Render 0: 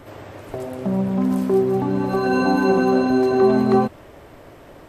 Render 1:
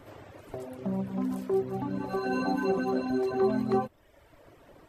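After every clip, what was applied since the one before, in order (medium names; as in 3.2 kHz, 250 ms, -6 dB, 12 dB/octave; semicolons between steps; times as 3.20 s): reverb removal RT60 1 s; trim -8.5 dB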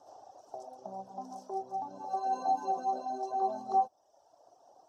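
two resonant band-passes 2.1 kHz, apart 2.9 oct; trim +6.5 dB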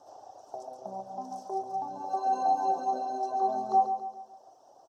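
feedback delay 139 ms, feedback 46%, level -8.5 dB; trim +3 dB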